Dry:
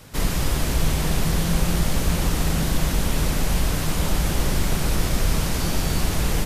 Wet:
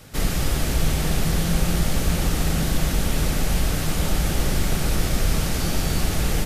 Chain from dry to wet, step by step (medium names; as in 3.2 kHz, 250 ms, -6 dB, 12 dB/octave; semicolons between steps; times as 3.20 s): band-stop 1 kHz, Q 8.6